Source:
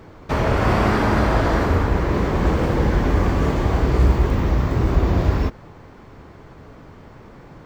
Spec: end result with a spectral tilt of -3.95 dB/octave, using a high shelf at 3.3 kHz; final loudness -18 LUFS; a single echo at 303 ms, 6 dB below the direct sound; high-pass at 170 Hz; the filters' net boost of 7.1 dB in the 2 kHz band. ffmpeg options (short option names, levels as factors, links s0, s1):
-af "highpass=170,equalizer=f=2000:t=o:g=7.5,highshelf=f=3300:g=5,aecho=1:1:303:0.501,volume=1.26"